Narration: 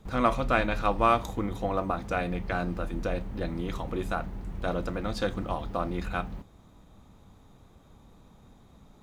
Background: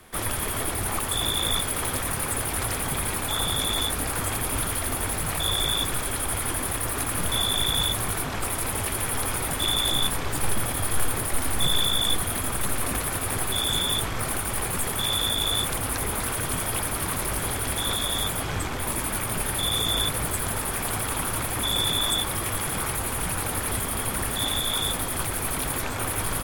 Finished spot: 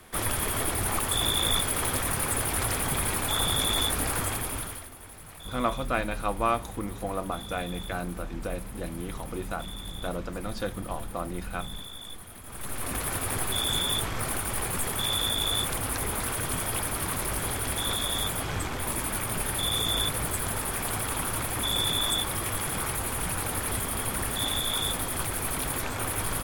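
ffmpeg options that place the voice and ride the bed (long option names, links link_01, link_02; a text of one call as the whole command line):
ffmpeg -i stem1.wav -i stem2.wav -filter_complex "[0:a]adelay=5400,volume=-3dB[link_01];[1:a]volume=15.5dB,afade=type=out:start_time=4.12:duration=0.78:silence=0.125893,afade=type=in:start_time=12.44:duration=0.66:silence=0.158489[link_02];[link_01][link_02]amix=inputs=2:normalize=0" out.wav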